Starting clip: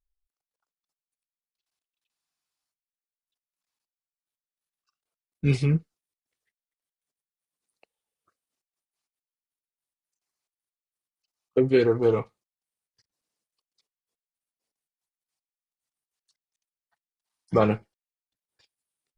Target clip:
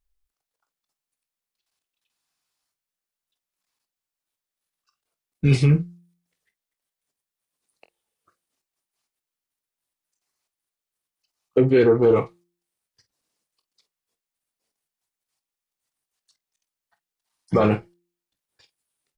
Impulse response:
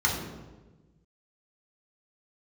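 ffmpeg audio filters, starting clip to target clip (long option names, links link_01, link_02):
-filter_complex "[0:a]bandreject=frequency=173.7:width_type=h:width=4,bandreject=frequency=347.4:width_type=h:width=4,asettb=1/sr,asplit=3[link_01][link_02][link_03];[link_01]atrim=end=11.614[link_04];[link_02]atrim=start=11.61:end=12.16,asetpts=PTS-STARTPTS,afade=type=in:duration=0.004:curve=qsin,afade=type=out:start_time=0.546:duration=0.004:curve=qsin,highshelf=frequency=4200:gain=-12[link_05];[link_03]atrim=start=12.156[link_06];[link_04][link_05]acrossfade=duration=0.004:curve1=hsin:curve2=qsin[link_07];[link_07][link_06]acrossfade=duration=0.004:curve1=qsin:curve2=hsin,aecho=1:1:22|48:0.237|0.168,alimiter=limit=-15dB:level=0:latency=1:release=11,volume=6.5dB"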